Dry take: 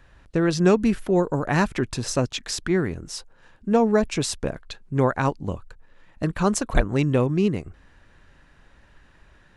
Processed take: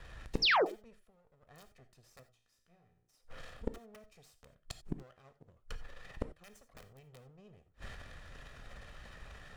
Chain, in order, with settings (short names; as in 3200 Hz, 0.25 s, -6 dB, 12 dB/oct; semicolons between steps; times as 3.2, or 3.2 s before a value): minimum comb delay 1.6 ms; 1.03–1.44 compressor 6:1, threshold -29 dBFS, peak gain reduction 10.5 dB; 4.94–5.47 low shelf 99 Hz -12 dB; transient shaper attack +3 dB, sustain +8 dB; wrapped overs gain 10 dB; flipped gate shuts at -25 dBFS, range -40 dB; 0.42–0.65 painted sound fall 310–5900 Hz -29 dBFS; 2.23–3.09 resonator 58 Hz, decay 0.65 s, harmonics all, mix 80%; non-linear reverb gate 0.11 s flat, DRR 10 dB; gain +2 dB